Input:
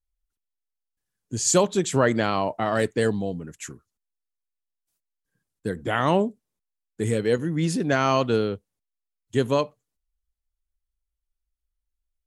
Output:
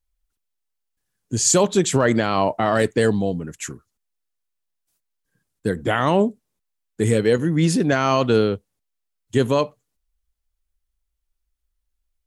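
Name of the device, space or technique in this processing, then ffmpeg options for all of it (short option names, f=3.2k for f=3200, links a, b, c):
clipper into limiter: -af "asoftclip=type=hard:threshold=-7.5dB,alimiter=limit=-13dB:level=0:latency=1:release=24,volume=6dB"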